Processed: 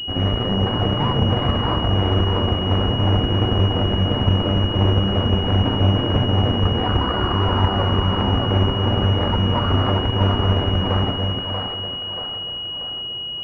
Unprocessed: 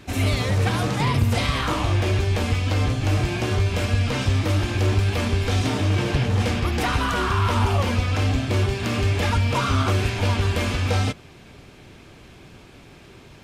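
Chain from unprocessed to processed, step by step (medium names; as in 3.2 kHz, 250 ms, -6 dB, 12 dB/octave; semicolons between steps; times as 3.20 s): Chebyshev shaper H 6 -8 dB, 8 -15 dB, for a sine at -11 dBFS; two-band feedback delay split 440 Hz, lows 280 ms, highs 634 ms, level -4 dB; class-D stage that switches slowly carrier 2.9 kHz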